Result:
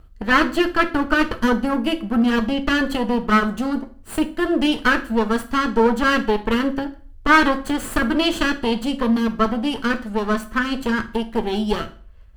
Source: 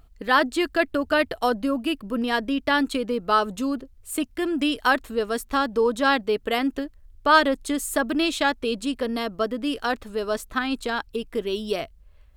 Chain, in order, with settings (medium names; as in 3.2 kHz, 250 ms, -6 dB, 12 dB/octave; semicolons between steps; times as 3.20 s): comb filter that takes the minimum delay 0.65 ms; treble shelf 2.6 kHz -8 dB; reverberation RT60 0.45 s, pre-delay 5 ms, DRR 6.5 dB; trim +6 dB